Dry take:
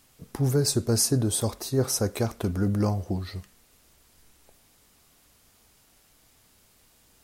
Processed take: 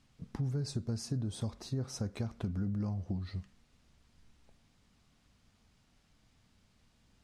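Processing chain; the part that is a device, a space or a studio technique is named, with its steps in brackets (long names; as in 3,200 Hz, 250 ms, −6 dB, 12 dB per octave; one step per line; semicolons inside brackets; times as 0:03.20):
jukebox (low-pass filter 5,300 Hz 12 dB per octave; low shelf with overshoot 280 Hz +6.5 dB, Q 1.5; downward compressor 5 to 1, threshold −24 dBFS, peak gain reduction 10 dB)
level −8.5 dB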